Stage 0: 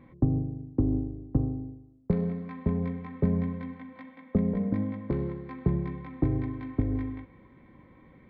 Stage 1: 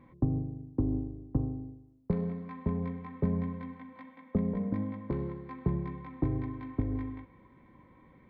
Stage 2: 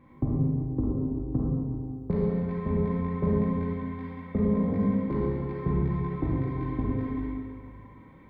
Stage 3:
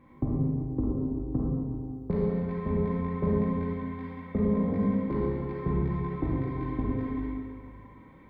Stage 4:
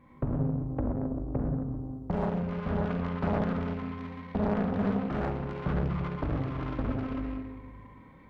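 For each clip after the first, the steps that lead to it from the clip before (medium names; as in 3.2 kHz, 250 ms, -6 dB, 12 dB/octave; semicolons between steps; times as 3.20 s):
peaking EQ 980 Hz +6 dB 0.29 oct; trim -4 dB
reverberation RT60 1.9 s, pre-delay 27 ms, DRR -5 dB
peaking EQ 120 Hz -3 dB 1.2 oct
self-modulated delay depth 0.94 ms; peaking EQ 350 Hz -5 dB 0.54 oct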